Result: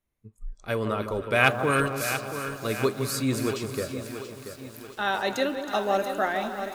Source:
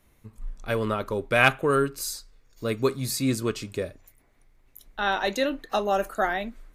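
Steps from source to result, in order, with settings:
0:01.67–0:02.66: ceiling on every frequency bin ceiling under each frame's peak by 15 dB
delay that swaps between a low-pass and a high-pass 160 ms, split 1,200 Hz, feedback 63%, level −7.5 dB
noise reduction from a noise print of the clip's start 19 dB
feedback echo with a high-pass in the loop 264 ms, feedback 72%, high-pass 420 Hz, level −19.5 dB
feedback echo at a low word length 683 ms, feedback 55%, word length 7 bits, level −9.5 dB
level −1.5 dB

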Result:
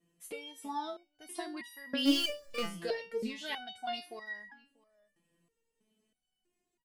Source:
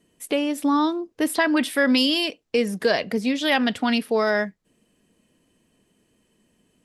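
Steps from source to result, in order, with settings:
0:02.05–0:02.66: power curve on the samples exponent 0.5
slap from a distant wall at 110 metres, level −25 dB
step-sequenced resonator 3.1 Hz 170–960 Hz

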